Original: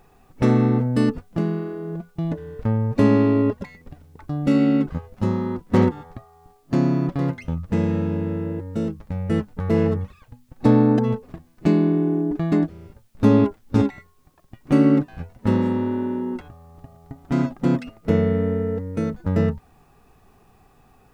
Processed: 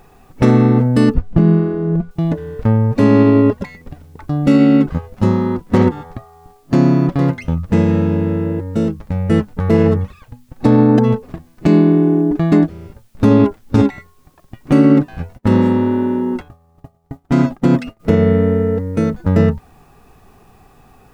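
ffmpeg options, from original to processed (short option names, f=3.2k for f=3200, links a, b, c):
-filter_complex "[0:a]asettb=1/sr,asplit=3[a][b][c];[a]atrim=end=1.144[d];[b]atrim=start=1.14:end=2.11,asetpts=PTS-STARTPTS,afade=t=in:d=0.004:c=qsin,afade=t=out:st=0.966:d=0.004:c=qsin,aemphasis=mode=reproduction:type=bsi[e];[c]atrim=start=2.106[f];[d][e]acrossfade=d=0.004:c1=hsin:c2=qsin[g];[g][f]acrossfade=d=0.004:c1=qsin:c2=hsin,asplit=3[h][i][j];[h]afade=t=out:st=15.37:d=0.02[k];[i]agate=range=-33dB:threshold=-37dB:ratio=3:release=100:detection=peak,afade=t=in:st=15.37:d=0.02,afade=t=out:st=17.99:d=0.02[l];[j]afade=t=in:st=17.99:d=0.02[m];[k][l][m]amix=inputs=3:normalize=0,alimiter=level_in=9dB:limit=-1dB:release=50:level=0:latency=1,volume=-1dB"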